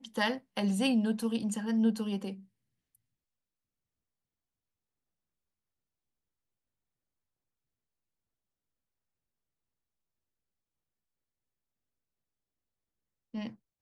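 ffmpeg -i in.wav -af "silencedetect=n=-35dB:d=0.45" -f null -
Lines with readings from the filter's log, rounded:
silence_start: 2.33
silence_end: 13.35 | silence_duration: 11.02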